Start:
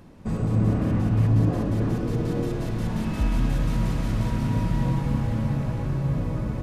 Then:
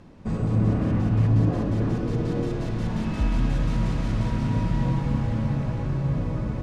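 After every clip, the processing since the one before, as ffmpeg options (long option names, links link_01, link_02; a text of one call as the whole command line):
ffmpeg -i in.wav -af "lowpass=7000" out.wav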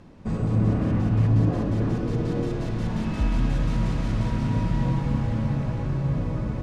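ffmpeg -i in.wav -af anull out.wav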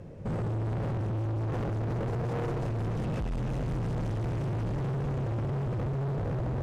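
ffmpeg -i in.wav -filter_complex "[0:a]equalizer=frequency=125:width_type=o:width=1:gain=11,equalizer=frequency=250:width_type=o:width=1:gain=-7,equalizer=frequency=500:width_type=o:width=1:gain=11,equalizer=frequency=1000:width_type=o:width=1:gain=-6,equalizer=frequency=4000:width_type=o:width=1:gain=-7,acrossover=split=2000[link_01][link_02];[link_01]alimiter=limit=-15.5dB:level=0:latency=1:release=27[link_03];[link_03][link_02]amix=inputs=2:normalize=0,volume=29.5dB,asoftclip=hard,volume=-29.5dB" out.wav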